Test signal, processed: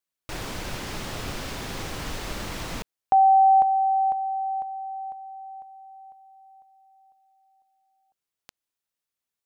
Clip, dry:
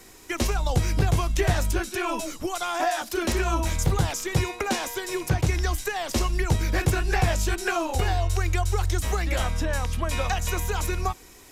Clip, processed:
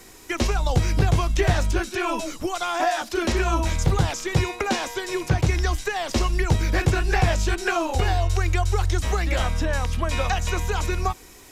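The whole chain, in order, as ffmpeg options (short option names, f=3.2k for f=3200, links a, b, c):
-filter_complex "[0:a]acrossover=split=7100[a][b];[b]acompressor=threshold=-49dB:ratio=4:attack=1:release=60[c];[a][c]amix=inputs=2:normalize=0,volume=2.5dB"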